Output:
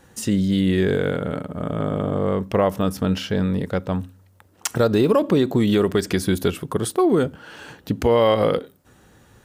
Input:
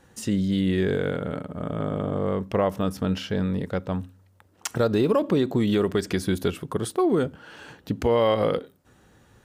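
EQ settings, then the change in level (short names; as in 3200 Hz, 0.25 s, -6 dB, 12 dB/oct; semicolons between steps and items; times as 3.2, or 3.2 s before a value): high shelf 9400 Hz +5.5 dB; +4.0 dB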